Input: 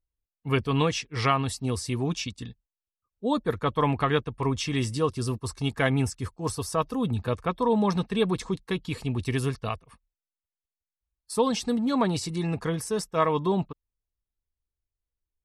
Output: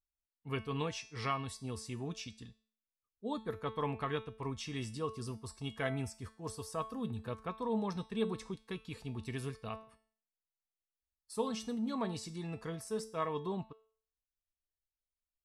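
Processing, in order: feedback comb 220 Hz, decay 0.48 s, harmonics all, mix 70%; trim -3.5 dB

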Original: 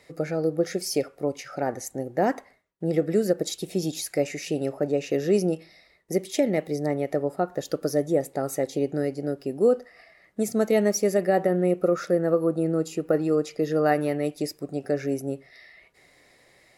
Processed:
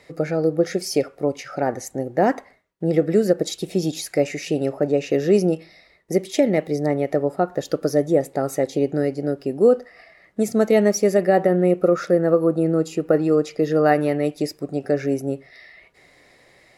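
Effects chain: treble shelf 7.2 kHz -7.5 dB; trim +5 dB

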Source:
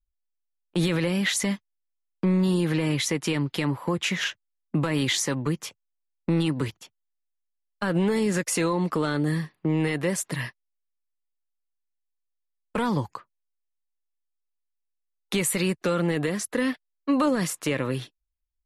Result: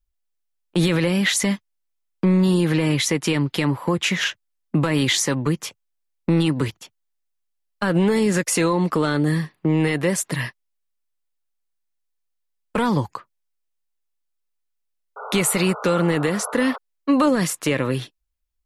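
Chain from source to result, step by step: painted sound noise, 15.16–16.78 s, 410–1500 Hz -39 dBFS; trim +5 dB

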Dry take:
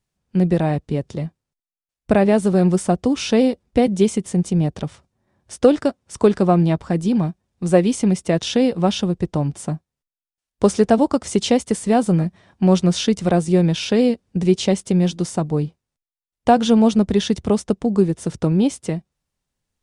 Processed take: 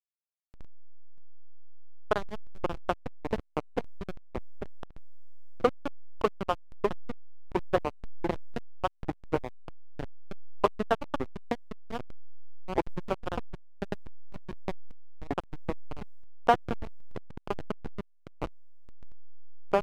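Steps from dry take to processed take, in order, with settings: transient shaper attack +9 dB, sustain -11 dB; band-pass filter 1.2 kHz, Q 2.6; ever faster or slower copies 129 ms, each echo -3 st, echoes 2; hysteresis with a dead band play -13 dBFS; trim -3 dB

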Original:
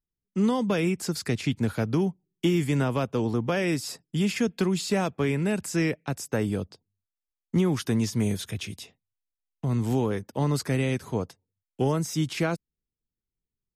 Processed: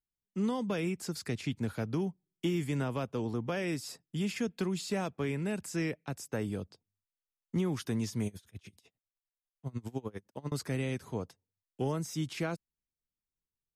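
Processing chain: 8.27–10.52 s: logarithmic tremolo 10 Hz, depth 28 dB; trim -8 dB

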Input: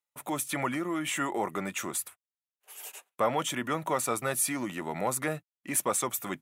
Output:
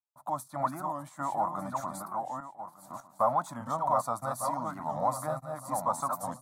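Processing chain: backward echo that repeats 601 ms, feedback 41%, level -4.5 dB; FFT filter 130 Hz 0 dB, 270 Hz -4 dB, 400 Hz -23 dB, 630 Hz +6 dB, 1.1 kHz +6 dB, 1.7 kHz -13 dB, 2.8 kHz -30 dB, 4.2 kHz -6 dB, 6.3 kHz -11 dB; gate -41 dBFS, range -8 dB; warped record 45 rpm, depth 160 cents; trim -2 dB

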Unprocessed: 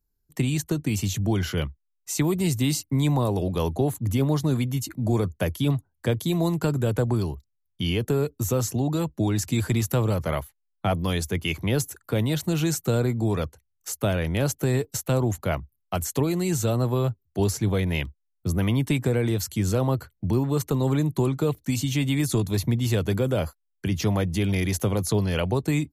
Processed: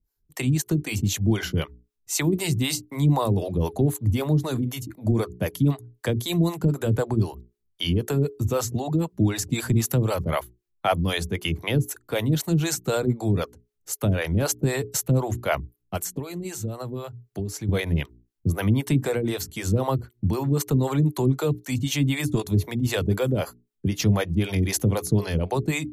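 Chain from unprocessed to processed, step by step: hum notches 60/120/180/240/300/360/420 Hz; 15.97–17.69 s: compression, threshold -30 dBFS, peak gain reduction 11.5 dB; harmonic tremolo 3.9 Hz, depth 100%, crossover 420 Hz; trim +6 dB

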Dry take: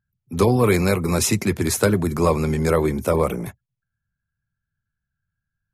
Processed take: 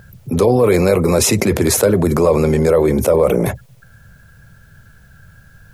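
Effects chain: peaking EQ 530 Hz +11 dB 0.94 oct; level flattener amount 70%; trim -4 dB

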